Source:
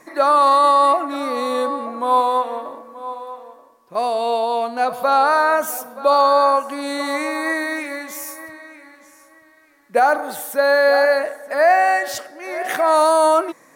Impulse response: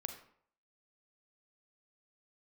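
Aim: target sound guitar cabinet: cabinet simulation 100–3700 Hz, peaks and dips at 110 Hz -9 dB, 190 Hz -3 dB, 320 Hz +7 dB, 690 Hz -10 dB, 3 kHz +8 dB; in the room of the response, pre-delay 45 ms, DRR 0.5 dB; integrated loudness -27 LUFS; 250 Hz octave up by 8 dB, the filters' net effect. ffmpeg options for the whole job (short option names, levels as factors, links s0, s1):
-filter_complex "[0:a]equalizer=f=250:t=o:g=5,asplit=2[s0][s1];[1:a]atrim=start_sample=2205,adelay=45[s2];[s1][s2]afir=irnorm=-1:irlink=0,volume=1.12[s3];[s0][s3]amix=inputs=2:normalize=0,highpass=100,equalizer=f=110:t=q:w=4:g=-9,equalizer=f=190:t=q:w=4:g=-3,equalizer=f=320:t=q:w=4:g=7,equalizer=f=690:t=q:w=4:g=-10,equalizer=f=3000:t=q:w=4:g=8,lowpass=f=3700:w=0.5412,lowpass=f=3700:w=1.3066,volume=0.282"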